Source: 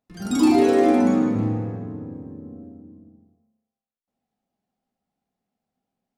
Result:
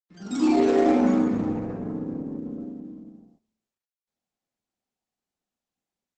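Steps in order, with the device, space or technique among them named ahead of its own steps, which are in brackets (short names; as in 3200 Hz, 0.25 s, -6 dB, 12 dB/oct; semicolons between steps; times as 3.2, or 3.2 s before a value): video call (HPF 150 Hz 24 dB/oct; AGC gain up to 13 dB; gate -51 dBFS, range -17 dB; gain -7 dB; Opus 12 kbps 48000 Hz)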